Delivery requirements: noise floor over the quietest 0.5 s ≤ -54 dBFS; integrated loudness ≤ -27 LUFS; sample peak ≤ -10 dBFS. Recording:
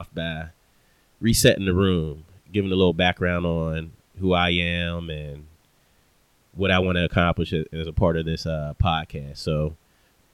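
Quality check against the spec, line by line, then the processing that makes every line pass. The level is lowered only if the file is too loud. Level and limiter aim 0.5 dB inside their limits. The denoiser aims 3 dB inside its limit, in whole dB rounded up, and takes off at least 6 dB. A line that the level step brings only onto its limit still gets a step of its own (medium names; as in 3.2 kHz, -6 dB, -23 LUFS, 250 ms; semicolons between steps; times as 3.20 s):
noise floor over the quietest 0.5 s -62 dBFS: pass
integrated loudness -23.0 LUFS: fail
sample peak -5.0 dBFS: fail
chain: trim -4.5 dB; peak limiter -10.5 dBFS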